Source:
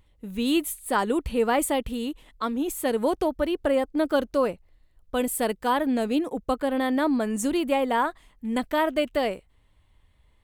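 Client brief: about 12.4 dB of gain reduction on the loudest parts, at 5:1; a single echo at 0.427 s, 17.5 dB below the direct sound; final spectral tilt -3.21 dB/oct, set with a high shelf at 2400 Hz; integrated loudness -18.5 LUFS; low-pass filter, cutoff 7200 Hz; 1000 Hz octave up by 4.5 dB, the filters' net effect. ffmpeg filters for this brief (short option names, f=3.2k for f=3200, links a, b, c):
-af "lowpass=7.2k,equalizer=f=1k:t=o:g=4,highshelf=f=2.4k:g=9,acompressor=threshold=-30dB:ratio=5,aecho=1:1:427:0.133,volume=15dB"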